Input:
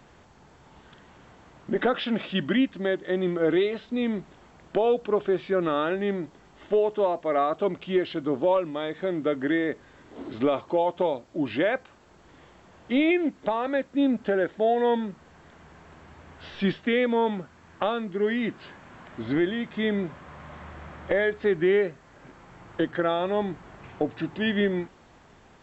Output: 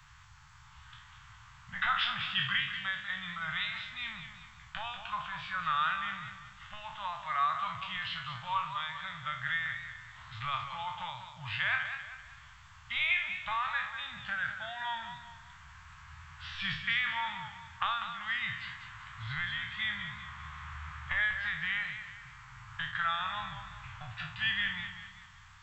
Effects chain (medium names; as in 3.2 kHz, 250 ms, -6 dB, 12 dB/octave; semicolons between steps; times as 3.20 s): spectral sustain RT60 0.46 s; elliptic band-stop 120–1100 Hz, stop band 70 dB; modulated delay 194 ms, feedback 41%, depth 79 cents, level -9 dB